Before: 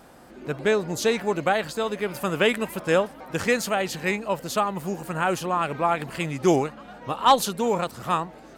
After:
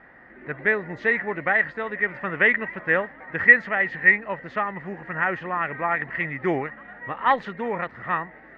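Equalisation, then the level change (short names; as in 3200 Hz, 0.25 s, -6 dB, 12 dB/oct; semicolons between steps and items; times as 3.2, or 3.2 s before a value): synth low-pass 1900 Hz, resonance Q 16; air absorption 100 m; -5.0 dB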